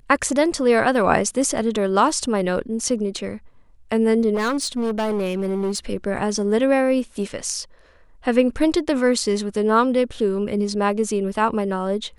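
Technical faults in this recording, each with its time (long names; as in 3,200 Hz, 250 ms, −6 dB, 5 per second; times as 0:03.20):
0:04.34–0:05.78: clipping −19 dBFS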